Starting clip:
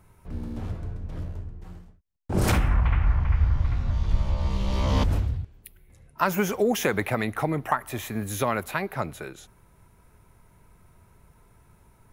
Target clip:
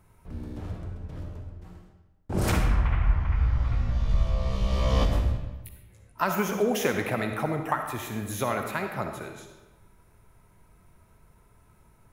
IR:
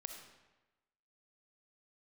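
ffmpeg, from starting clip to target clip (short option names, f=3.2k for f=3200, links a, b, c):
-filter_complex "[0:a]asettb=1/sr,asplit=3[a][b][c];[a]atrim=end=3.374[d];[b]atrim=start=3.37:end=6.24,asetpts=PTS-STARTPTS,afade=t=in:d=0.004:c=qsin,afade=t=out:st=2.866:d=0.004:c=qsin,asplit=2[e][f];[f]adelay=17,volume=-3dB[g];[e][g]amix=inputs=2:normalize=0,atrim=end_sample=126567[h];[c]atrim=start=6.236[i];[d][h]acrossfade=d=0.004:c1=hsin:c2=qsin[j];[j][i]acrossfade=d=0.004:c1=qsin:c2=hsin[k];[1:a]atrim=start_sample=2205[l];[k][l]afir=irnorm=-1:irlink=0,volume=1.5dB"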